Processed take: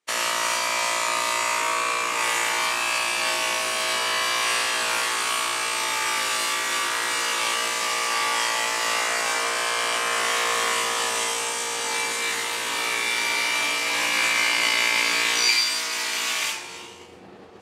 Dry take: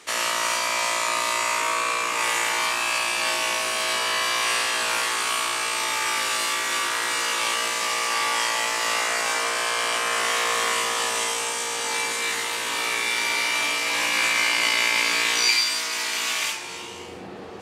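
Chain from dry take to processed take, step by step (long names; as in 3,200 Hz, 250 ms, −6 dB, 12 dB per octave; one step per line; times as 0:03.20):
downward expander −31 dBFS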